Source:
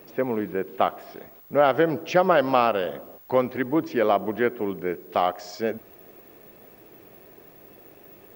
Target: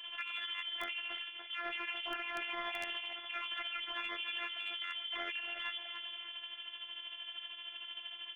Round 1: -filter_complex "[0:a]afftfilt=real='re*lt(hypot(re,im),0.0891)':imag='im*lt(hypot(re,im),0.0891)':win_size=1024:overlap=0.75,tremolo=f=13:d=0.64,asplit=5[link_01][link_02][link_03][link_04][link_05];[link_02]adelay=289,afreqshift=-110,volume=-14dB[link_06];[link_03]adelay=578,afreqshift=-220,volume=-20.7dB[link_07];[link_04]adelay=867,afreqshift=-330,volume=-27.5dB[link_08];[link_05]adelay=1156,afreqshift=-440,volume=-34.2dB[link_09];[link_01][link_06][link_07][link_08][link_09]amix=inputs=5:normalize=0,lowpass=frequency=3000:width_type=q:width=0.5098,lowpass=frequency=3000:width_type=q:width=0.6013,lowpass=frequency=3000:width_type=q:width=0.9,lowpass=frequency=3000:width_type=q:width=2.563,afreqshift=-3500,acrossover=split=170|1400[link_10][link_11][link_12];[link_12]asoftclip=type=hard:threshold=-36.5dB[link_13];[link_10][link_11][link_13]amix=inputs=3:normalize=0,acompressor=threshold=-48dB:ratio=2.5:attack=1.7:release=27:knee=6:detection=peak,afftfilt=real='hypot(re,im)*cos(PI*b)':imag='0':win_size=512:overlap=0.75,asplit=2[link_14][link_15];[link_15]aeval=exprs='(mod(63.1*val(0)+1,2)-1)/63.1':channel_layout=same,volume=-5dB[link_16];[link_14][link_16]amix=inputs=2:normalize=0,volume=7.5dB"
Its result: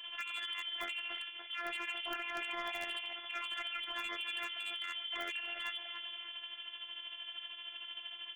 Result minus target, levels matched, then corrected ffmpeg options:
hard clipping: distortion +28 dB
-filter_complex "[0:a]afftfilt=real='re*lt(hypot(re,im),0.0891)':imag='im*lt(hypot(re,im),0.0891)':win_size=1024:overlap=0.75,tremolo=f=13:d=0.64,asplit=5[link_01][link_02][link_03][link_04][link_05];[link_02]adelay=289,afreqshift=-110,volume=-14dB[link_06];[link_03]adelay=578,afreqshift=-220,volume=-20.7dB[link_07];[link_04]adelay=867,afreqshift=-330,volume=-27.5dB[link_08];[link_05]adelay=1156,afreqshift=-440,volume=-34.2dB[link_09];[link_01][link_06][link_07][link_08][link_09]amix=inputs=5:normalize=0,lowpass=frequency=3000:width_type=q:width=0.5098,lowpass=frequency=3000:width_type=q:width=0.6013,lowpass=frequency=3000:width_type=q:width=0.9,lowpass=frequency=3000:width_type=q:width=2.563,afreqshift=-3500,acrossover=split=170|1400[link_10][link_11][link_12];[link_12]asoftclip=type=hard:threshold=-29dB[link_13];[link_10][link_11][link_13]amix=inputs=3:normalize=0,acompressor=threshold=-48dB:ratio=2.5:attack=1.7:release=27:knee=6:detection=peak,afftfilt=real='hypot(re,im)*cos(PI*b)':imag='0':win_size=512:overlap=0.75,asplit=2[link_14][link_15];[link_15]aeval=exprs='(mod(63.1*val(0)+1,2)-1)/63.1':channel_layout=same,volume=-5dB[link_16];[link_14][link_16]amix=inputs=2:normalize=0,volume=7.5dB"

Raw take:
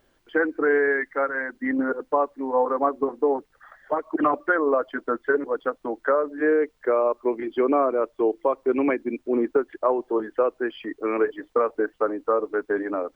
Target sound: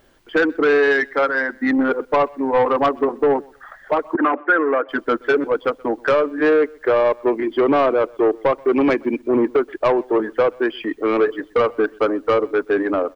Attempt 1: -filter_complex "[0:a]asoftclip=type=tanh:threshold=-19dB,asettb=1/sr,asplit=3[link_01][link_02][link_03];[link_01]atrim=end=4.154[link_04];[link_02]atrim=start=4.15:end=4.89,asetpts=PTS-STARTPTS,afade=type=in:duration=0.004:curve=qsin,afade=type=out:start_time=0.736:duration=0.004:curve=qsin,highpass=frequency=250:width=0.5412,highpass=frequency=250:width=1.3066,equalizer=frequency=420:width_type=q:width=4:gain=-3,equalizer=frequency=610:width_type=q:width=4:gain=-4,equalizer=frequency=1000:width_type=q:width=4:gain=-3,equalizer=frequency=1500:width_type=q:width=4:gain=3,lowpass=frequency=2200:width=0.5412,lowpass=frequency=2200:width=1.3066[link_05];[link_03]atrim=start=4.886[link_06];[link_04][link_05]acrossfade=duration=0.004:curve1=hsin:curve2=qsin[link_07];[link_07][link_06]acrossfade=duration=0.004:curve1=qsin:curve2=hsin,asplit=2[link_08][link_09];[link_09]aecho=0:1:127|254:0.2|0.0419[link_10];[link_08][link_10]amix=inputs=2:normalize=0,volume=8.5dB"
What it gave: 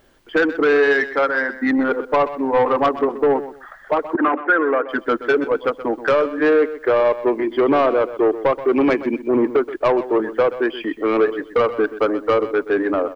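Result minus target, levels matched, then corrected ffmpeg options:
echo-to-direct +12 dB
-filter_complex "[0:a]asoftclip=type=tanh:threshold=-19dB,asettb=1/sr,asplit=3[link_01][link_02][link_03];[link_01]atrim=end=4.154[link_04];[link_02]atrim=start=4.15:end=4.89,asetpts=PTS-STARTPTS,afade=type=in:duration=0.004:curve=qsin,afade=type=out:start_time=0.736:duration=0.004:curve=qsin,highpass=frequency=250:width=0.5412,highpass=frequency=250:width=1.3066,equalizer=frequency=420:width_type=q:width=4:gain=-3,equalizer=frequency=610:width_type=q:width=4:gain=-4,equalizer=frequency=1000:width_type=q:width=4:gain=-3,equalizer=frequency=1500:width_type=q:width=4:gain=3,lowpass=frequency=2200:width=0.5412,lowpass=frequency=2200:width=1.3066[link_05];[link_03]atrim=start=4.886[link_06];[link_04][link_05]acrossfade=duration=0.004:curve1=hsin:curve2=qsin[link_07];[link_07][link_06]acrossfade=duration=0.004:curve1=qsin:curve2=hsin,asplit=2[link_08][link_09];[link_09]aecho=0:1:127|254:0.0501|0.0105[link_10];[link_08][link_10]amix=inputs=2:normalize=0,volume=8.5dB"

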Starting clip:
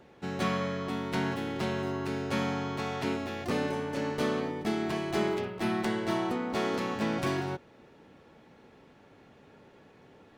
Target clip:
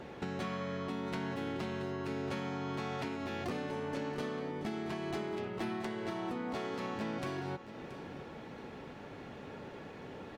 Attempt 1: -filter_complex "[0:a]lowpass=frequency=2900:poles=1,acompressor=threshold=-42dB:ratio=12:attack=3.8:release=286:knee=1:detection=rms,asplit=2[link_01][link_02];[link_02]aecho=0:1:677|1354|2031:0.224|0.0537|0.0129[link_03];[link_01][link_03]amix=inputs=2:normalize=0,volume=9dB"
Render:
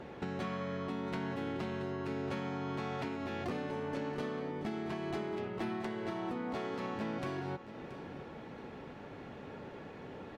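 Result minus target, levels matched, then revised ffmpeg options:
8,000 Hz band −4.5 dB
-filter_complex "[0:a]lowpass=frequency=6500:poles=1,acompressor=threshold=-42dB:ratio=12:attack=3.8:release=286:knee=1:detection=rms,asplit=2[link_01][link_02];[link_02]aecho=0:1:677|1354|2031:0.224|0.0537|0.0129[link_03];[link_01][link_03]amix=inputs=2:normalize=0,volume=9dB"

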